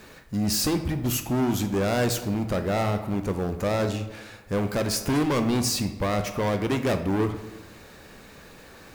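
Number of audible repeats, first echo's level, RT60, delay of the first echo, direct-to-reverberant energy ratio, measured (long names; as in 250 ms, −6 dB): no echo audible, no echo audible, 1.1 s, no echo audible, 7.5 dB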